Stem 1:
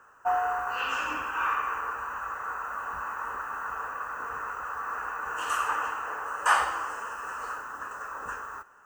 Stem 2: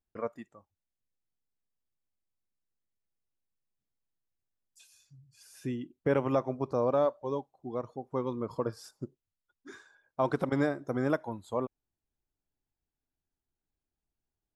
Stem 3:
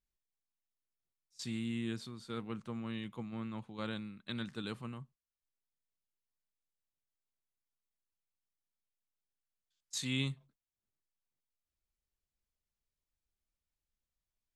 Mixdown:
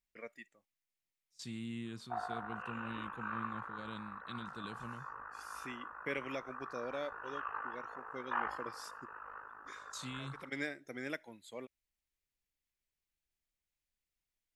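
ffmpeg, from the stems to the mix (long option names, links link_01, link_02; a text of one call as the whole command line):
ffmpeg -i stem1.wav -i stem2.wav -i stem3.wav -filter_complex "[0:a]flanger=delay=15.5:depth=3.4:speed=2.5,lowpass=frequency=2200:width=0.5412,lowpass=frequency=2200:width=1.3066,tremolo=f=52:d=0.788,adelay=1850,volume=-7dB[link_01];[1:a]highpass=190,highshelf=frequency=1500:width_type=q:width=3:gain=11,volume=-12.5dB[link_02];[2:a]alimiter=level_in=7dB:limit=-24dB:level=0:latency=1:release=57,volume=-7dB,volume=-4dB,asplit=2[link_03][link_04];[link_04]apad=whole_len=642072[link_05];[link_02][link_05]sidechaincompress=threshold=-55dB:ratio=10:attack=16:release=244[link_06];[link_01][link_06][link_03]amix=inputs=3:normalize=0" out.wav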